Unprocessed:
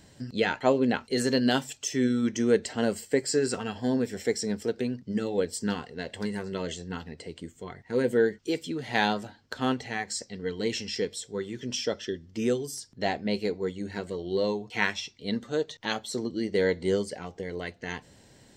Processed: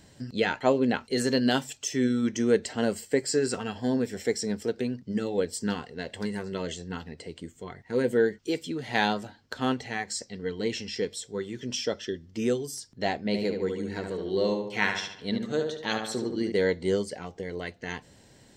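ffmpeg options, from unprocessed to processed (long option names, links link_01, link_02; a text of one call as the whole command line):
ffmpeg -i in.wav -filter_complex "[0:a]asettb=1/sr,asplit=3[link_01][link_02][link_03];[link_01]atrim=end=10.474[link_04];[link_02]atrim=start=10.47:end=11.03,asetpts=PTS-STARTPTS,afade=type=in:duration=0.004:curve=qsin,afade=type=out:start_time=0.556:duration=0.004:curve=qsin,highshelf=frequency=5200:gain=-5.5[link_05];[link_03]atrim=start=11.026[link_06];[link_04][link_05]acrossfade=duration=0.004:curve1=hsin:curve2=qsin[link_07];[link_07][link_06]acrossfade=duration=0.004:curve1=qsin:curve2=hsin,asettb=1/sr,asplit=3[link_08][link_09][link_10];[link_08]atrim=end=13.244[link_11];[link_09]atrim=start=13.24:end=16.52,asetpts=PTS-STARTPTS,afade=type=in:duration=0.004:curve=qsin,afade=type=out:start_time=3.276:duration=0.004:curve=qsin,asplit=2[link_12][link_13];[link_13]adelay=73,lowpass=frequency=3200:poles=1,volume=-5dB,asplit=2[link_14][link_15];[link_15]adelay=73,lowpass=frequency=3200:poles=1,volume=0.52,asplit=2[link_16][link_17];[link_17]adelay=73,lowpass=frequency=3200:poles=1,volume=0.52,asplit=2[link_18][link_19];[link_19]adelay=73,lowpass=frequency=3200:poles=1,volume=0.52,asplit=2[link_20][link_21];[link_21]adelay=73,lowpass=frequency=3200:poles=1,volume=0.52,asplit=2[link_22][link_23];[link_23]adelay=73,lowpass=frequency=3200:poles=1,volume=0.52,asplit=2[link_24][link_25];[link_25]adelay=73,lowpass=frequency=3200:poles=1,volume=0.52[link_26];[link_12][link_14][link_16][link_18][link_20][link_22][link_24][link_26]amix=inputs=8:normalize=0,atrim=end_sample=144648[link_27];[link_10]atrim=start=16.516[link_28];[link_11][link_27]acrossfade=duration=0.004:curve1=hsin:curve2=qsin[link_29];[link_29][link_28]acrossfade=duration=0.004:curve1=qsin:curve2=hsin" out.wav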